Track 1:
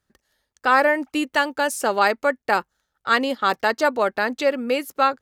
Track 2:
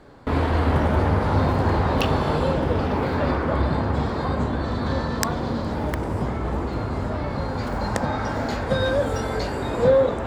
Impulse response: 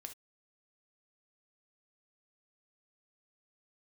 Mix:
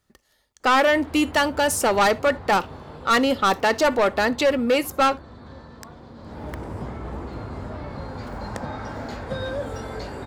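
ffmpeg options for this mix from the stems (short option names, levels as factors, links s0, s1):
-filter_complex "[0:a]bandreject=f=1600:w=7.5,aeval=exprs='clip(val(0),-1,0.133)':c=same,volume=1.41,asplit=2[s0][s1];[s1]volume=0.562[s2];[1:a]adelay=600,volume=0.447,afade=t=in:st=6.15:d=0.4:silence=0.281838[s3];[2:a]atrim=start_sample=2205[s4];[s2][s4]afir=irnorm=-1:irlink=0[s5];[s0][s3][s5]amix=inputs=3:normalize=0,asoftclip=type=tanh:threshold=0.251"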